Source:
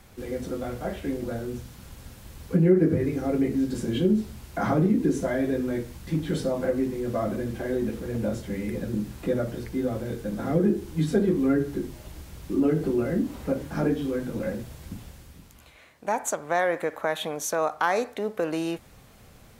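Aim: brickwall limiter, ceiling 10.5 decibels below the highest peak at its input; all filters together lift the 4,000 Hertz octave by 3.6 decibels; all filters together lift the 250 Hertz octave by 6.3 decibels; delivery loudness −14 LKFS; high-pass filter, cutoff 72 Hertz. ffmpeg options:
ffmpeg -i in.wav -af "highpass=72,equalizer=frequency=250:width_type=o:gain=8,equalizer=frequency=4000:width_type=o:gain=4.5,volume=11.5dB,alimiter=limit=-4dB:level=0:latency=1" out.wav

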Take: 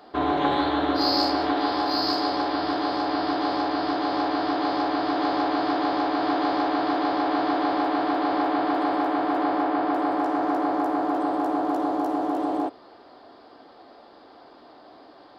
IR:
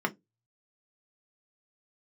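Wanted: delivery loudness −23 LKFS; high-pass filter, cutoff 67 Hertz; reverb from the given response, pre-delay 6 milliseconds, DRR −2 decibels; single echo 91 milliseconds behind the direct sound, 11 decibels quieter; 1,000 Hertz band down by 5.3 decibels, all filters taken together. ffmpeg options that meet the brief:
-filter_complex "[0:a]highpass=67,equalizer=frequency=1000:width_type=o:gain=-8,aecho=1:1:91:0.282,asplit=2[link_01][link_02];[1:a]atrim=start_sample=2205,adelay=6[link_03];[link_02][link_03]afir=irnorm=-1:irlink=0,volume=-7dB[link_04];[link_01][link_04]amix=inputs=2:normalize=0,volume=1dB"

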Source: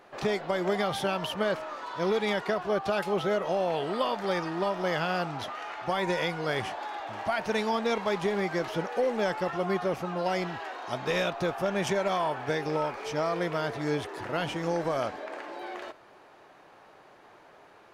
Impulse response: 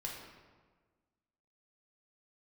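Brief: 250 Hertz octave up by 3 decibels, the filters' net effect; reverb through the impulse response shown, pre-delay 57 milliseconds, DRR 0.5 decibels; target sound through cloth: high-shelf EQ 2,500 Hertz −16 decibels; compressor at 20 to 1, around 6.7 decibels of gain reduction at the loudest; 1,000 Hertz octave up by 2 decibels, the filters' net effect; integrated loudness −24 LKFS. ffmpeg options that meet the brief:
-filter_complex "[0:a]equalizer=frequency=250:width_type=o:gain=4.5,equalizer=frequency=1000:width_type=o:gain=5,acompressor=threshold=-27dB:ratio=20,asplit=2[link_01][link_02];[1:a]atrim=start_sample=2205,adelay=57[link_03];[link_02][link_03]afir=irnorm=-1:irlink=0,volume=-0.5dB[link_04];[link_01][link_04]amix=inputs=2:normalize=0,highshelf=frequency=2500:gain=-16,volume=7dB"

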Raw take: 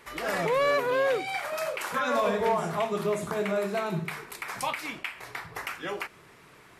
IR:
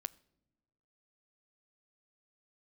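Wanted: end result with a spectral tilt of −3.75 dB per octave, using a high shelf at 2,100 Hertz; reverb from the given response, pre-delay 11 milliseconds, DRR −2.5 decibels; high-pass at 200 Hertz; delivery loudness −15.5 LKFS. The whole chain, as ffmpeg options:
-filter_complex "[0:a]highpass=200,highshelf=frequency=2100:gain=6,asplit=2[link_01][link_02];[1:a]atrim=start_sample=2205,adelay=11[link_03];[link_02][link_03]afir=irnorm=-1:irlink=0,volume=5dB[link_04];[link_01][link_04]amix=inputs=2:normalize=0,volume=8dB"

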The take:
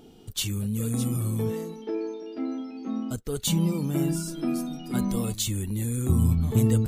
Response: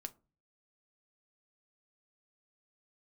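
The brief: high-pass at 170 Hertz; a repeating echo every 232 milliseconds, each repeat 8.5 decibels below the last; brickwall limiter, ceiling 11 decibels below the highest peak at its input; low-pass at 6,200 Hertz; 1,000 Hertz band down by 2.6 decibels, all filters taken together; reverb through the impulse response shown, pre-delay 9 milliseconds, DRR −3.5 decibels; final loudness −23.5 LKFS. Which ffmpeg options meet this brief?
-filter_complex "[0:a]highpass=170,lowpass=6200,equalizer=frequency=1000:width_type=o:gain=-3.5,alimiter=level_in=1dB:limit=-24dB:level=0:latency=1,volume=-1dB,aecho=1:1:232|464|696|928:0.376|0.143|0.0543|0.0206,asplit=2[link_01][link_02];[1:a]atrim=start_sample=2205,adelay=9[link_03];[link_02][link_03]afir=irnorm=-1:irlink=0,volume=7.5dB[link_04];[link_01][link_04]amix=inputs=2:normalize=0,volume=3.5dB"

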